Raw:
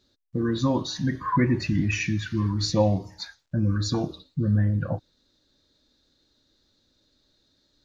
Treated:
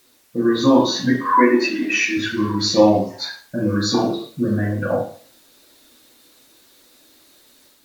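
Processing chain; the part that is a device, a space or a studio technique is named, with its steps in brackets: 1.14–2.17 HPF 290 Hz 24 dB/oct; filmed off a television (BPF 270–6400 Hz; bell 470 Hz +5 dB 0.47 oct; reverb RT60 0.45 s, pre-delay 8 ms, DRR -4 dB; white noise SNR 34 dB; AGC gain up to 4 dB; gain +2 dB; AAC 96 kbps 48000 Hz)

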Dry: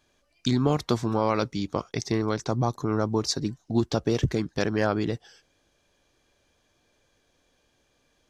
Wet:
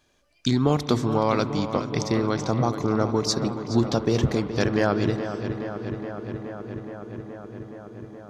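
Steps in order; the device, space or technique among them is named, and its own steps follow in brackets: dub delay into a spring reverb (darkening echo 0.421 s, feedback 82%, low-pass 4200 Hz, level -10.5 dB; spring tank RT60 3.8 s, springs 34 ms, chirp 45 ms, DRR 13.5 dB); gain +2 dB

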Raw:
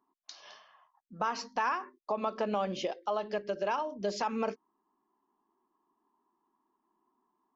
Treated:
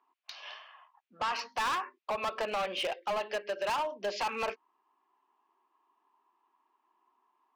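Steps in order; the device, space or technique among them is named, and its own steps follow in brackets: megaphone (BPF 630–3600 Hz; bell 2600 Hz +8 dB 0.6 oct; hard clip -34.5 dBFS, distortion -7 dB); 0.5–1.35 LPF 6100 Hz 12 dB/oct; gain +6 dB

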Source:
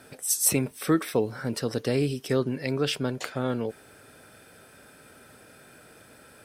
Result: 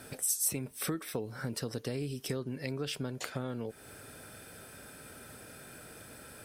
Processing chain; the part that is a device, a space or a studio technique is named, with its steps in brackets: ASMR close-microphone chain (low shelf 140 Hz +6.5 dB; compressor 5:1, threshold -34 dBFS, peak gain reduction 15.5 dB; high shelf 6200 Hz +6.5 dB)

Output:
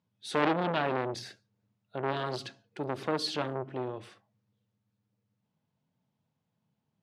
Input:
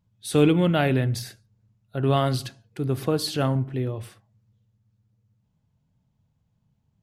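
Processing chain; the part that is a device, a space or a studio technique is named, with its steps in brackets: public-address speaker with an overloaded transformer (core saturation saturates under 1500 Hz; BPF 230–5200 Hz); gain -2 dB

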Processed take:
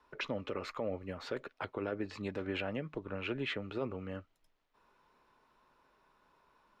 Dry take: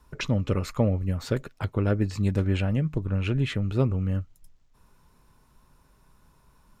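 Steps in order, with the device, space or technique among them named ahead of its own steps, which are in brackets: DJ mixer with the lows and highs turned down (three-band isolator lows -21 dB, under 300 Hz, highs -20 dB, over 4300 Hz; limiter -24 dBFS, peak gain reduction 10 dB); gain -2 dB

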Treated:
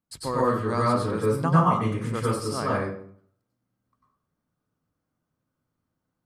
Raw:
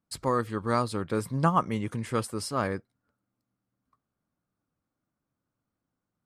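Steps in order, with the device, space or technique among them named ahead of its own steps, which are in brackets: bathroom (reverb RT60 0.55 s, pre-delay 91 ms, DRR -5.5 dB); gain -3.5 dB

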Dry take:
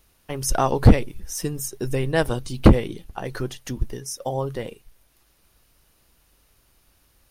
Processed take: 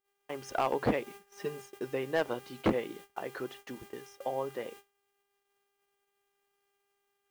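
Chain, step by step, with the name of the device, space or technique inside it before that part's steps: aircraft radio (BPF 320–2700 Hz; hard clip -14.5 dBFS, distortion -10 dB; buzz 400 Hz, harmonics 8, -49 dBFS -4 dB/oct; white noise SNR 22 dB; gate -43 dBFS, range -35 dB); 1.06–1.62 comb 4.9 ms, depth 77%; gain -6 dB

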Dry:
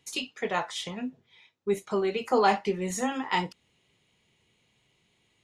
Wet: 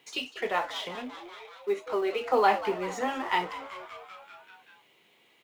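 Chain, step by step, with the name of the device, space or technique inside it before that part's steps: 0.95–2.32 HPF 250 Hz 24 dB/oct; frequency-shifting echo 0.193 s, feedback 65%, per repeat +95 Hz, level -16 dB; phone line with mismatched companding (BPF 350–3400 Hz; G.711 law mismatch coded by mu)

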